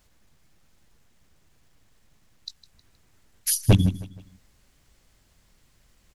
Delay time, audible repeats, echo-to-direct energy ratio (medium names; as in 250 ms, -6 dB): 157 ms, 3, -16.5 dB